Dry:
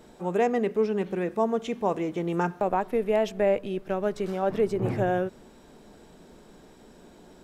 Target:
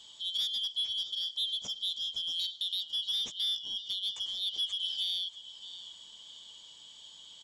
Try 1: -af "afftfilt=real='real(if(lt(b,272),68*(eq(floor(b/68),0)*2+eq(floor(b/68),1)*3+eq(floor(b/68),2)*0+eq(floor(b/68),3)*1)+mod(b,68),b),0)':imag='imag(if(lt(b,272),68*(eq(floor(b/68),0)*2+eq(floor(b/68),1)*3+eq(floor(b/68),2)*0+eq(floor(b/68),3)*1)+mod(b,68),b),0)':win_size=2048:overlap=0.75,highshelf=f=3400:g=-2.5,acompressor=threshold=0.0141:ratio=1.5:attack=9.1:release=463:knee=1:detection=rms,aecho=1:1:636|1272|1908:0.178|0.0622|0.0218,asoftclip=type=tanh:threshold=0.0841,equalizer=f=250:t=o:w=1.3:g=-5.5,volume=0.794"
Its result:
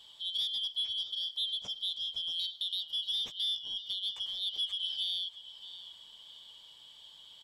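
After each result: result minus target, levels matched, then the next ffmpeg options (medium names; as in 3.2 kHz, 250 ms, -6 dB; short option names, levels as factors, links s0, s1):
8 kHz band -6.0 dB; 250 Hz band -2.5 dB
-af "afftfilt=real='real(if(lt(b,272),68*(eq(floor(b/68),0)*2+eq(floor(b/68),1)*3+eq(floor(b/68),2)*0+eq(floor(b/68),3)*1)+mod(b,68),b),0)':imag='imag(if(lt(b,272),68*(eq(floor(b/68),0)*2+eq(floor(b/68),1)*3+eq(floor(b/68),2)*0+eq(floor(b/68),3)*1)+mod(b,68),b),0)':win_size=2048:overlap=0.75,lowpass=f=6900:t=q:w=5.3,highshelf=f=3400:g=-2.5,acompressor=threshold=0.0141:ratio=1.5:attack=9.1:release=463:knee=1:detection=rms,aecho=1:1:636|1272|1908:0.178|0.0622|0.0218,asoftclip=type=tanh:threshold=0.0841,equalizer=f=250:t=o:w=1.3:g=-5.5,volume=0.794"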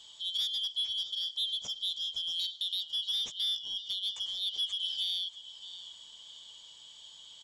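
250 Hz band -4.5 dB
-af "afftfilt=real='real(if(lt(b,272),68*(eq(floor(b/68),0)*2+eq(floor(b/68),1)*3+eq(floor(b/68),2)*0+eq(floor(b/68),3)*1)+mod(b,68),b),0)':imag='imag(if(lt(b,272),68*(eq(floor(b/68),0)*2+eq(floor(b/68),1)*3+eq(floor(b/68),2)*0+eq(floor(b/68),3)*1)+mod(b,68),b),0)':win_size=2048:overlap=0.75,lowpass=f=6900:t=q:w=5.3,highshelf=f=3400:g=-2.5,acompressor=threshold=0.0141:ratio=1.5:attack=9.1:release=463:knee=1:detection=rms,aecho=1:1:636|1272|1908:0.178|0.0622|0.0218,asoftclip=type=tanh:threshold=0.0841,volume=0.794"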